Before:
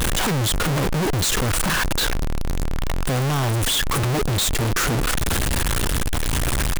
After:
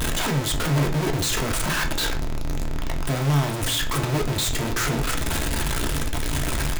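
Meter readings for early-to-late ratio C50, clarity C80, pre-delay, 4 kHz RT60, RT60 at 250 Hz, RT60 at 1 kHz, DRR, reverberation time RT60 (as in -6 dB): 12.5 dB, 18.0 dB, 3 ms, 0.45 s, 0.50 s, 0.40 s, 2.0 dB, 0.40 s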